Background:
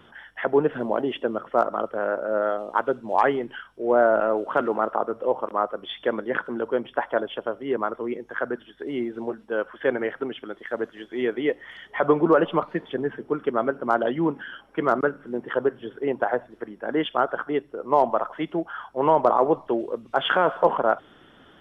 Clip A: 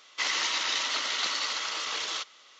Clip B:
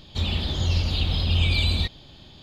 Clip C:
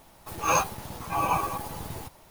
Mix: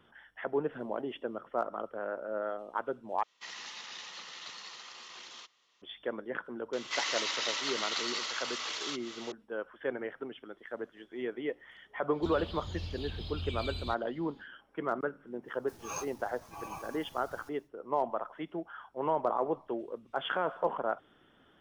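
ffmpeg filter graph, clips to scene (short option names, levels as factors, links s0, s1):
-filter_complex "[1:a]asplit=2[s0][s1];[0:a]volume=0.266[s2];[s0]afreqshift=-92[s3];[s1]acompressor=mode=upward:threshold=0.0251:ratio=4:attack=2.4:release=169:knee=2.83:detection=peak[s4];[3:a]equalizer=f=5700:w=1.6:g=8[s5];[s2]asplit=2[s6][s7];[s6]atrim=end=3.234[s8];[s3]atrim=end=2.59,asetpts=PTS-STARTPTS,volume=0.158[s9];[s7]atrim=start=5.816[s10];[s4]atrim=end=2.59,asetpts=PTS-STARTPTS,volume=0.562,afade=t=in:d=0.004:c=hsin,afade=t=out:st=2.586:d=0.004:c=hsin,adelay=6730[s11];[2:a]atrim=end=2.42,asetpts=PTS-STARTPTS,volume=0.141,afade=t=in:d=0.1,afade=t=out:st=2.32:d=0.1,adelay=12070[s12];[s5]atrim=end=2.3,asetpts=PTS-STARTPTS,volume=0.126,afade=t=in:d=0.1,afade=t=out:st=2.2:d=0.1,adelay=15410[s13];[s8][s9]acrossfade=d=0.004:c1=hsin:c2=hsin[s14];[s14][s10]acrossfade=d=0.004:c1=hsin:c2=hsin[s15];[s15][s11][s12][s13]amix=inputs=4:normalize=0"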